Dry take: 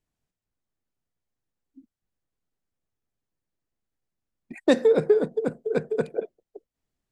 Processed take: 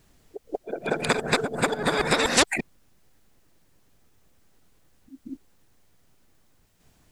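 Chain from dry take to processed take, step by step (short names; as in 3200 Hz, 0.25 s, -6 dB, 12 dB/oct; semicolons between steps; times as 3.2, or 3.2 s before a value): whole clip reversed; pre-echo 0.185 s -18.5 dB; spectral compressor 4:1; gain +2.5 dB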